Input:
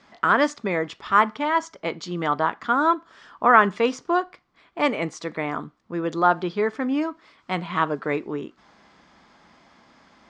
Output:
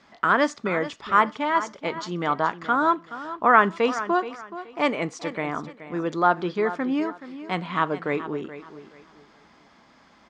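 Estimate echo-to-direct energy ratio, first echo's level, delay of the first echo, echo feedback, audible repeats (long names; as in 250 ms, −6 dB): −13.0 dB, −13.5 dB, 425 ms, 27%, 2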